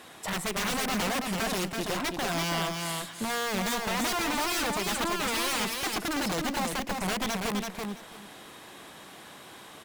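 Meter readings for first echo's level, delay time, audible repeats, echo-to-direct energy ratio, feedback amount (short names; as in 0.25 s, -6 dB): -4.0 dB, 0.332 s, 3, -4.0 dB, 18%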